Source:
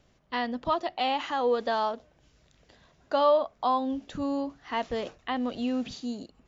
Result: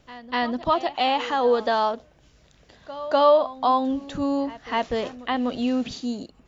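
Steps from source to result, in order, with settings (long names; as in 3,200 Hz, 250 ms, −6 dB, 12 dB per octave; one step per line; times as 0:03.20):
echo ahead of the sound 248 ms −17 dB
level +5.5 dB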